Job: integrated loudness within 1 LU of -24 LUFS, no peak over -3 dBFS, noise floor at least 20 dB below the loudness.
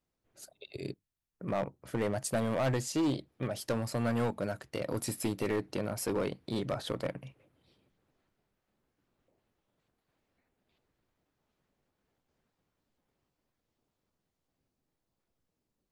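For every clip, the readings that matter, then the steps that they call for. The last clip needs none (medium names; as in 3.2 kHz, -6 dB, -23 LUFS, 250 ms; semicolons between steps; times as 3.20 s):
clipped samples 1.1%; clipping level -25.5 dBFS; loudness -34.5 LUFS; peak level -25.5 dBFS; loudness target -24.0 LUFS
-> clip repair -25.5 dBFS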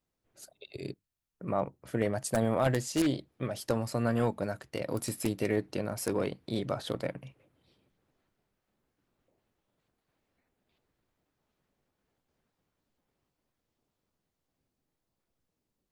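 clipped samples 0.0%; loudness -32.5 LUFS; peak level -16.5 dBFS; loudness target -24.0 LUFS
-> trim +8.5 dB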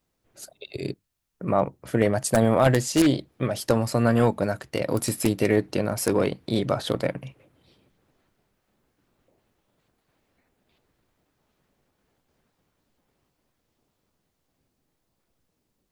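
loudness -24.0 LUFS; peak level -8.0 dBFS; noise floor -76 dBFS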